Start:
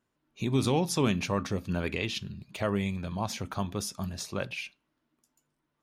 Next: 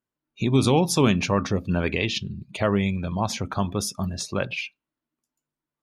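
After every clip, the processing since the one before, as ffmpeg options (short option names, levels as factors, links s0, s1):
-af "afftdn=nr=17:nf=-48,volume=2.24"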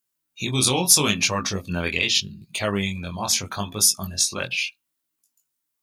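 -filter_complex "[0:a]crystalizer=i=9.5:c=0,asplit=2[s0][s1];[s1]volume=1.41,asoftclip=hard,volume=0.708,volume=0.316[s2];[s0][s2]amix=inputs=2:normalize=0,flanger=delay=18.5:depth=5.2:speed=0.79,volume=0.531"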